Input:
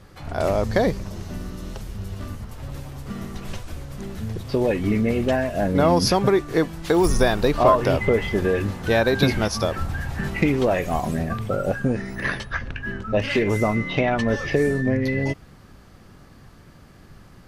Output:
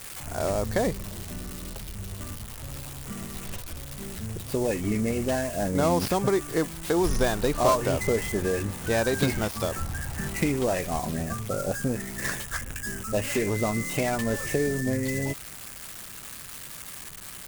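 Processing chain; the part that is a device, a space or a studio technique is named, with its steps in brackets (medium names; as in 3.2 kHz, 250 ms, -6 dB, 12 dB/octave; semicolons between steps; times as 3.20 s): budget class-D amplifier (dead-time distortion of 0.12 ms; zero-crossing glitches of -16.5 dBFS); trim -5.5 dB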